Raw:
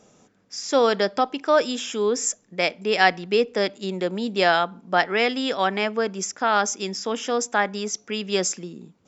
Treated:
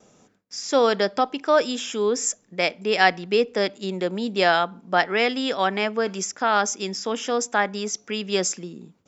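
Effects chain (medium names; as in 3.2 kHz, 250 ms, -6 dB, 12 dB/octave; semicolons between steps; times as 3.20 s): gate with hold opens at -51 dBFS; 6.07–8.12 s: tape noise reduction on one side only encoder only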